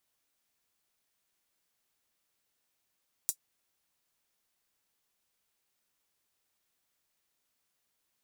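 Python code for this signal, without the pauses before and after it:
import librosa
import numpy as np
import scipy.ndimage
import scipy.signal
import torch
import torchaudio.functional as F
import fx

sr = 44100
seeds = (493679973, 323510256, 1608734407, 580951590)

y = fx.drum_hat(sr, length_s=0.24, from_hz=7000.0, decay_s=0.08)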